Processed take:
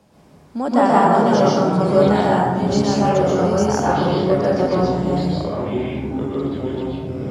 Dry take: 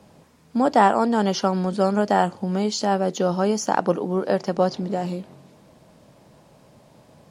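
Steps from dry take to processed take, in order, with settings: echoes that change speed 0.111 s, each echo -6 st, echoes 3, each echo -6 dB; plate-style reverb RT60 1.3 s, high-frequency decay 0.45×, pre-delay 0.11 s, DRR -6 dB; gain -4 dB

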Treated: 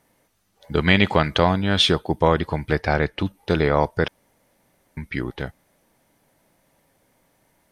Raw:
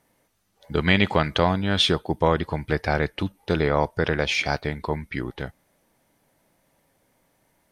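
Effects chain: 2.78–3.25 high shelf 8900 Hz -10 dB; 4.08–4.97 room tone; gain +2.5 dB

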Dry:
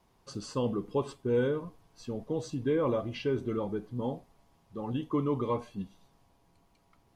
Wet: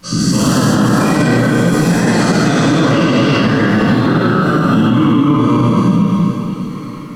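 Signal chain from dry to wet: spectral dilation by 0.48 s; resonant low shelf 110 Hz -6 dB, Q 3; notch 3600 Hz, Q 23; two-slope reverb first 0.48 s, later 4.9 s, from -18 dB, DRR -1.5 dB; echoes that change speed 0.14 s, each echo +4 st, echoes 2; in parallel at -2 dB: compressor, threshold -28 dBFS, peak gain reduction 15 dB; on the sum: band shelf 590 Hz -10.5 dB; on a send: echo with dull and thin repeats by turns 0.238 s, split 1000 Hz, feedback 53%, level -3.5 dB; on the sum: maximiser +13.5 dB; gain -2.5 dB

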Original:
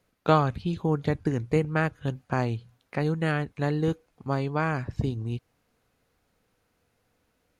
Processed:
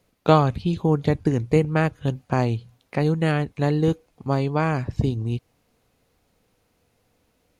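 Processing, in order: bell 1500 Hz -5.5 dB 0.78 oct; gain +5.5 dB

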